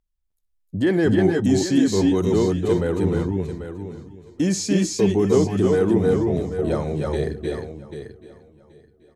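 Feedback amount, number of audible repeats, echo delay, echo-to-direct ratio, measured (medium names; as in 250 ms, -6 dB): no regular repeats, 6, 62 ms, -1.0 dB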